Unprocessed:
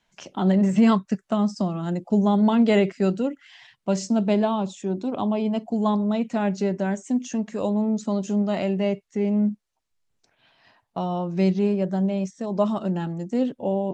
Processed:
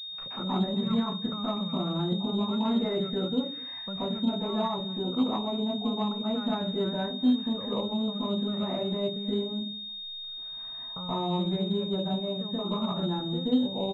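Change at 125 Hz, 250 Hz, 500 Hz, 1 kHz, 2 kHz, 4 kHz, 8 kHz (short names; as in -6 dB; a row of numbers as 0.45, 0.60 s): -6.5 dB, -6.5 dB, -7.0 dB, -5.5 dB, -11.0 dB, +10.0 dB, n/a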